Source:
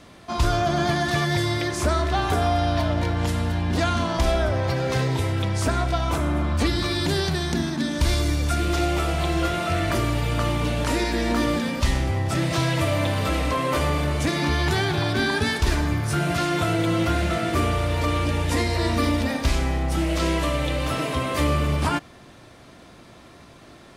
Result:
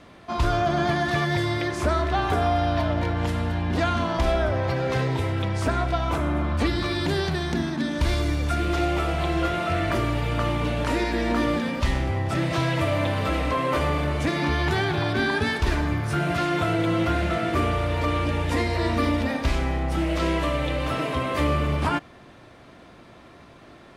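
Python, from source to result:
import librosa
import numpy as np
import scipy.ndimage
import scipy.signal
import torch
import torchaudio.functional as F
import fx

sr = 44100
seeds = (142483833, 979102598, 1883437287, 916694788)

y = fx.bass_treble(x, sr, bass_db=-2, treble_db=-9)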